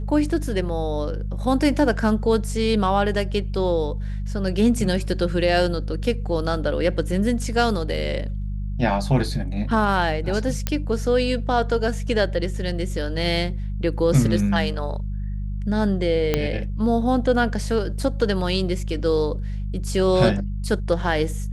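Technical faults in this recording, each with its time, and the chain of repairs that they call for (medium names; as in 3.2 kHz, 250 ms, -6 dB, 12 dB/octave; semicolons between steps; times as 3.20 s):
hum 50 Hz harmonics 4 -27 dBFS
10.67 s: pop -7 dBFS
16.34 s: pop -6 dBFS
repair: de-click; de-hum 50 Hz, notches 4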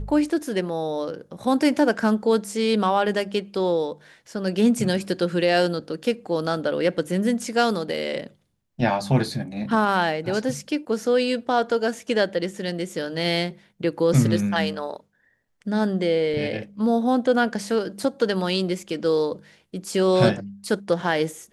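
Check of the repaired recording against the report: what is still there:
16.34 s: pop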